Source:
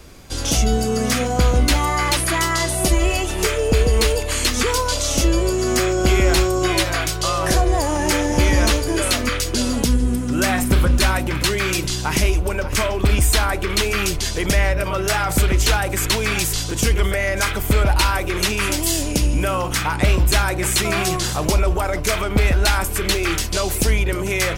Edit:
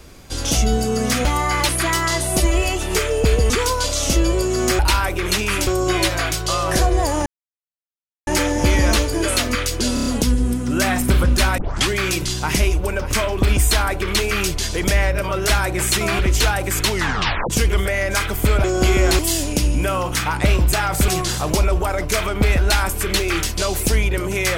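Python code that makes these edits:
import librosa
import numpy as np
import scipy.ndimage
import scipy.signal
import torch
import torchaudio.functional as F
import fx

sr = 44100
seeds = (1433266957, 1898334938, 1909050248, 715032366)

y = fx.edit(x, sr, fx.cut(start_s=1.25, length_s=0.48),
    fx.cut(start_s=3.98, length_s=0.6),
    fx.swap(start_s=5.87, length_s=0.55, other_s=17.9, other_length_s=0.88),
    fx.insert_silence(at_s=8.01, length_s=1.01),
    fx.stutter(start_s=9.68, slice_s=0.03, count=5),
    fx.tape_start(start_s=11.2, length_s=0.31),
    fx.swap(start_s=15.11, length_s=0.34, other_s=20.33, other_length_s=0.7),
    fx.tape_stop(start_s=16.15, length_s=0.61), tone=tone)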